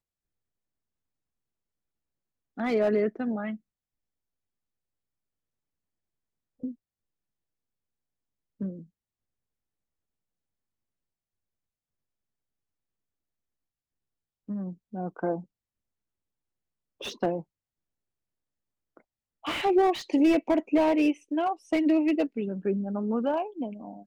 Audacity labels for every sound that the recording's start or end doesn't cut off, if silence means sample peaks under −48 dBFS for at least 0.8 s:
2.570000	3.570000	sound
6.630000	6.740000	sound
8.610000	8.840000	sound
14.490000	15.440000	sound
17.010000	17.420000	sound